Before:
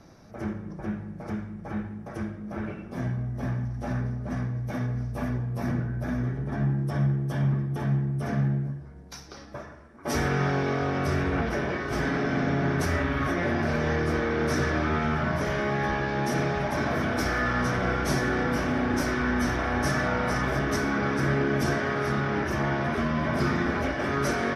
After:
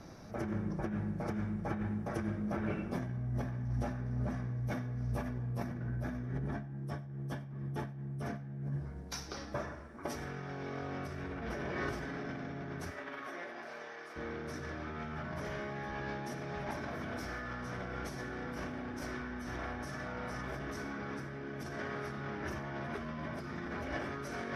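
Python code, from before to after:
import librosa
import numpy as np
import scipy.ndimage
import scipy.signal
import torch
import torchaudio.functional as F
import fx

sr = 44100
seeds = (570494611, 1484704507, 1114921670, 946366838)

p1 = fx.over_compress(x, sr, threshold_db=-34.0, ratio=-1.0)
p2 = fx.highpass(p1, sr, hz=fx.line((12.9, 320.0), (14.15, 670.0)), slope=12, at=(12.9, 14.15), fade=0.02)
p3 = p2 + fx.echo_single(p2, sr, ms=98, db=-21.5, dry=0)
y = p3 * librosa.db_to_amplitude(-5.5)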